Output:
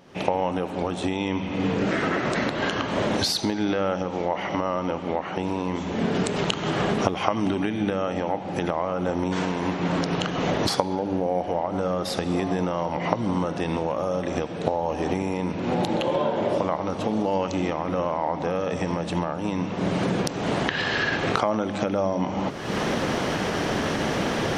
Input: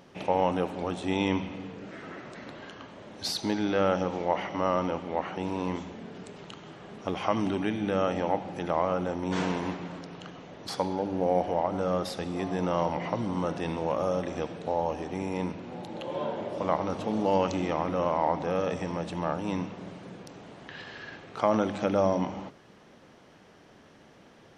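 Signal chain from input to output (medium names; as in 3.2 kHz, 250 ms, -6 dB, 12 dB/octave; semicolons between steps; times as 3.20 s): recorder AGC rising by 50 dB/s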